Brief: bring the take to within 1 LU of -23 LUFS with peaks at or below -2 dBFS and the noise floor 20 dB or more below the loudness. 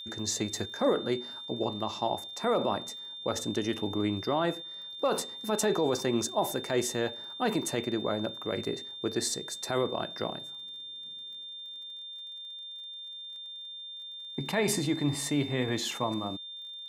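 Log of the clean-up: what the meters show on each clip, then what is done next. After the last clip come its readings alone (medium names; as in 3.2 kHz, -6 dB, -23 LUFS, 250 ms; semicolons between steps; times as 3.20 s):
tick rate 38 per s; steady tone 3.6 kHz; tone level -40 dBFS; loudness -32.0 LUFS; peak level -17.0 dBFS; loudness target -23.0 LUFS
-> de-click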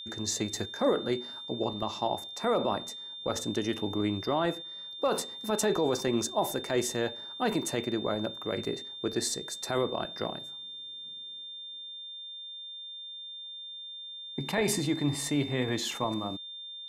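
tick rate 0 per s; steady tone 3.6 kHz; tone level -40 dBFS
-> band-stop 3.6 kHz, Q 30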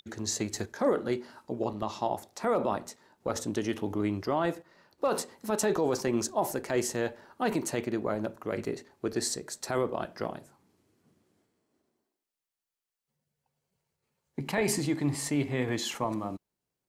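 steady tone not found; loudness -31.5 LUFS; peak level -17.0 dBFS; loudness target -23.0 LUFS
-> trim +8.5 dB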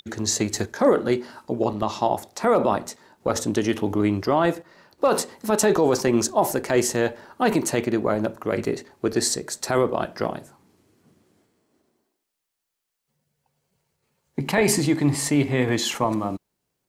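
loudness -23.0 LUFS; peak level -8.5 dBFS; noise floor -81 dBFS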